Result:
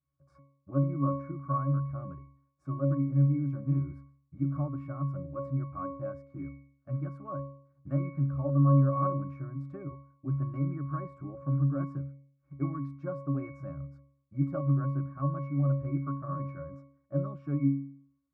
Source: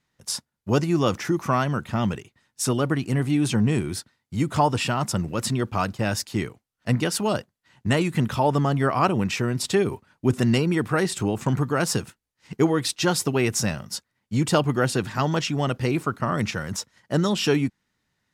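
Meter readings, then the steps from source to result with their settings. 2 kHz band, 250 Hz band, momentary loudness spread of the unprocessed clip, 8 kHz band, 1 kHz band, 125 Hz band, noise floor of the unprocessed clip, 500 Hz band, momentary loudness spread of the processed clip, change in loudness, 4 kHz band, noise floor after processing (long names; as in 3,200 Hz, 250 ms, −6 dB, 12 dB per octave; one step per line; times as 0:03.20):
below −25 dB, −8.5 dB, 9 LU, below −40 dB, −12.0 dB, −3.5 dB, −79 dBFS, −13.0 dB, 16 LU, −7.5 dB, below −40 dB, −74 dBFS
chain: high shelf with overshoot 2,100 Hz −10.5 dB, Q 3
resonances in every octave C#, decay 0.57 s
level +5.5 dB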